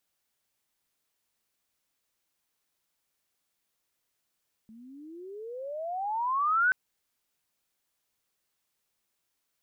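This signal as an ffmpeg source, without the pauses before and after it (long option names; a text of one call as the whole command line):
ffmpeg -f lavfi -i "aevalsrc='pow(10,(-20+27.5*(t/2.03-1))/20)*sin(2*PI*216*2.03/(34*log(2)/12)*(exp(34*log(2)/12*t/2.03)-1))':duration=2.03:sample_rate=44100" out.wav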